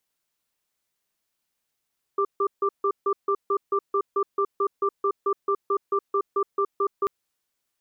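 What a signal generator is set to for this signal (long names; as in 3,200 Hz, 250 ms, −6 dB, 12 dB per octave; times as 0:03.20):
tone pair in a cadence 399 Hz, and 1,180 Hz, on 0.07 s, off 0.15 s, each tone −22.5 dBFS 4.89 s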